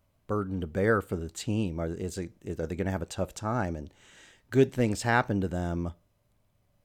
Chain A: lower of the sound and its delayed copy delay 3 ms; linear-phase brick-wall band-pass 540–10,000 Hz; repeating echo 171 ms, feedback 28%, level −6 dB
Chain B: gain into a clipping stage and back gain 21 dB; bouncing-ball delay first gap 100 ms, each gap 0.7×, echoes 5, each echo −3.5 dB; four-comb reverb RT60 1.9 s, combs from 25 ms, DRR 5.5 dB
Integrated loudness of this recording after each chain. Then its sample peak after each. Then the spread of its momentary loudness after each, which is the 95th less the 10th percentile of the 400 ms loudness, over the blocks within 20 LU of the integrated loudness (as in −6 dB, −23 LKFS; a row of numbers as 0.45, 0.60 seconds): −37.0, −28.5 LKFS; −16.0, −13.0 dBFS; 16, 11 LU